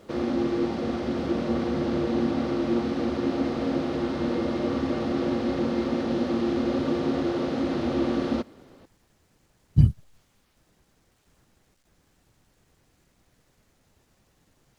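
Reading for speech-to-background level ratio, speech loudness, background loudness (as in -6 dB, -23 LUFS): 3.5 dB, -23.5 LUFS, -27.0 LUFS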